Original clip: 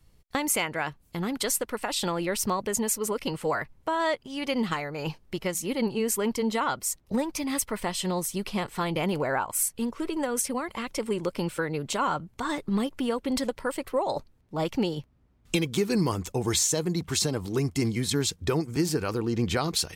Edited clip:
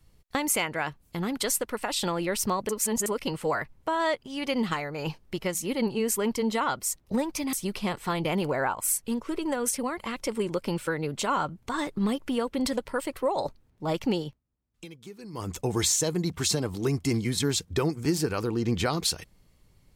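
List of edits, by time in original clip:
2.69–3.06 s: reverse
7.53–8.24 s: delete
14.91–16.24 s: dip -18.5 dB, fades 0.21 s

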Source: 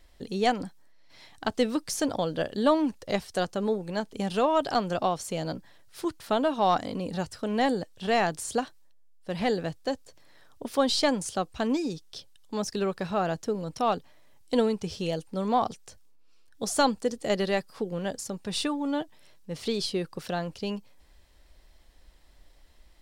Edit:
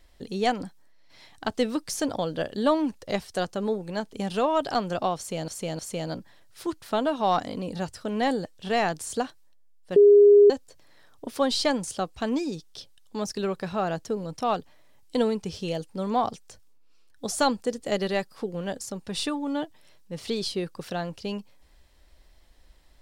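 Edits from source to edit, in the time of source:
5.17–5.48 s: loop, 3 plays
9.34–9.88 s: bleep 409 Hz -10.5 dBFS

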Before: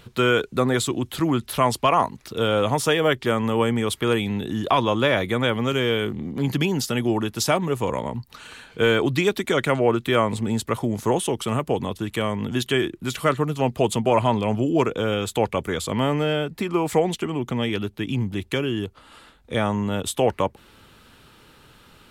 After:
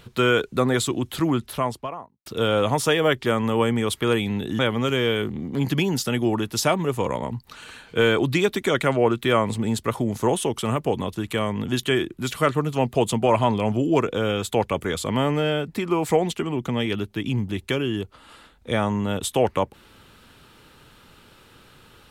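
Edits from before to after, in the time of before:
1.19–2.26 s: studio fade out
4.59–5.42 s: delete

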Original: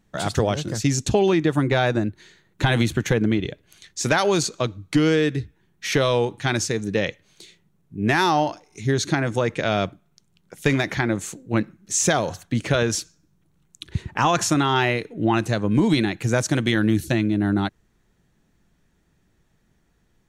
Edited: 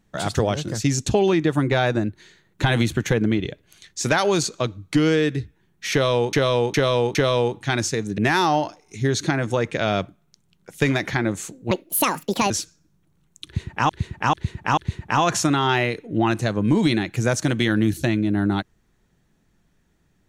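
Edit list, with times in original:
5.92–6.33 s: loop, 4 plays
6.95–8.02 s: delete
11.55–12.89 s: speed 169%
13.84–14.28 s: loop, 4 plays

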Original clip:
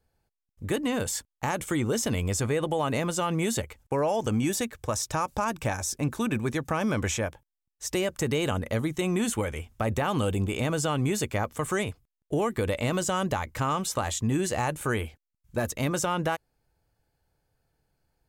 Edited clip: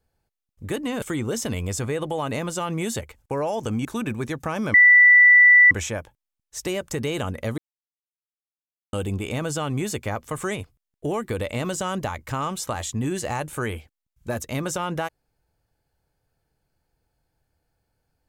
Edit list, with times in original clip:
1.02–1.63 s: delete
4.46–6.10 s: delete
6.99 s: add tone 1.97 kHz -9 dBFS 0.97 s
8.86–10.21 s: mute

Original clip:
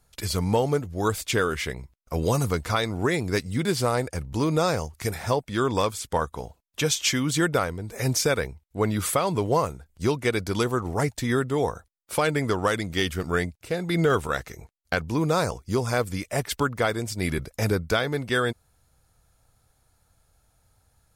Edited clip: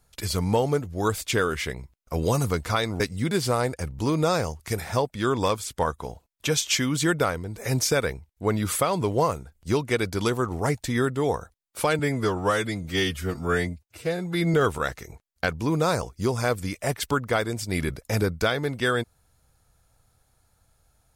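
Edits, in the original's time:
3.00–3.34 s: delete
12.33–14.03 s: stretch 1.5×

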